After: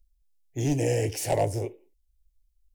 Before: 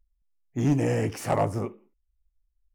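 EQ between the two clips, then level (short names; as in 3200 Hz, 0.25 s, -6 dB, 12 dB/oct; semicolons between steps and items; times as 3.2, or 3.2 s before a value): low shelf 280 Hz +5 dB; high shelf 2300 Hz +8 dB; fixed phaser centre 500 Hz, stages 4; 0.0 dB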